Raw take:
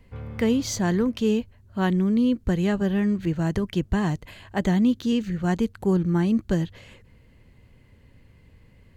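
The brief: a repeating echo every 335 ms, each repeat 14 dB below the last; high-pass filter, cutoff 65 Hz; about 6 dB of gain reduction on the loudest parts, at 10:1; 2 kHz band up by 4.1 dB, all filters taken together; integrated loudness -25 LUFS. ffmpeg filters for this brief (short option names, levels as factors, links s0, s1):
-af "highpass=65,equalizer=f=2000:t=o:g=5,acompressor=threshold=0.0708:ratio=10,aecho=1:1:335|670:0.2|0.0399,volume=1.5"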